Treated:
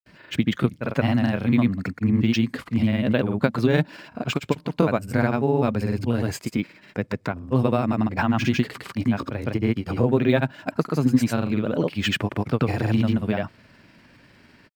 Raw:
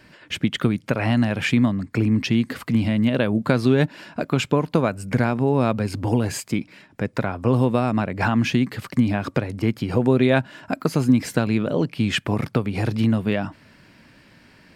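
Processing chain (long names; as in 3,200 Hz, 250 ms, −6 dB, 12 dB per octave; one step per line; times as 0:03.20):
granular cloud, pitch spread up and down by 0 semitones
linearly interpolated sample-rate reduction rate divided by 2×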